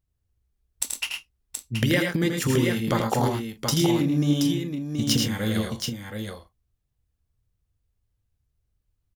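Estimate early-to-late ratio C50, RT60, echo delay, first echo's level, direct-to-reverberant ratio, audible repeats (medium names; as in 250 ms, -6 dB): no reverb, no reverb, 82 ms, -6.0 dB, no reverb, 4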